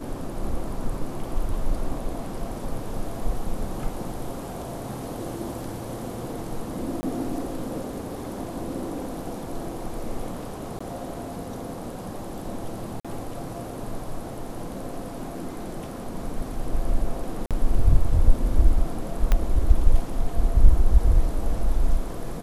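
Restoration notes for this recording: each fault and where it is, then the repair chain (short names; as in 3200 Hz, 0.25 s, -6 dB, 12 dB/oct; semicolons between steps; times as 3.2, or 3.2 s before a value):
7.01–7.03 gap 20 ms
10.79–10.8 gap 15 ms
13–13.05 gap 46 ms
17.46–17.51 gap 47 ms
19.32 pop -8 dBFS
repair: de-click; interpolate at 7.01, 20 ms; interpolate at 10.79, 15 ms; interpolate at 13, 46 ms; interpolate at 17.46, 47 ms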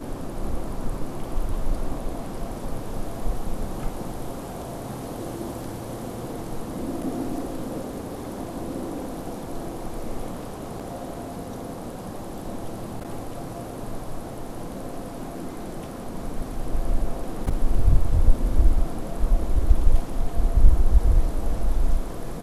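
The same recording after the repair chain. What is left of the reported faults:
19.32 pop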